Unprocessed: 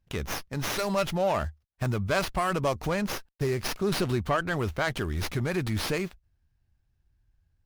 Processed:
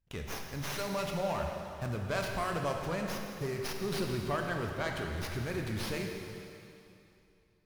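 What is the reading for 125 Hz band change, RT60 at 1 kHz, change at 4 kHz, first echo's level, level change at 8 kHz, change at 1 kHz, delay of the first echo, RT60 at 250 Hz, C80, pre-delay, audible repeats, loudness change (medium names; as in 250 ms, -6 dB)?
-6.5 dB, 2.8 s, -6.5 dB, no echo, -6.5 dB, -6.5 dB, no echo, 2.7 s, 4.0 dB, 16 ms, no echo, -6.5 dB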